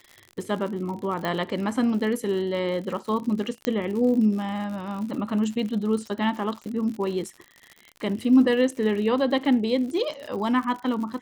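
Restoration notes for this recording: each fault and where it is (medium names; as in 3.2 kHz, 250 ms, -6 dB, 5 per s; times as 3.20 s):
crackle 81 per s -33 dBFS
1.25 s: pop -15 dBFS
3.65 s: pop -11 dBFS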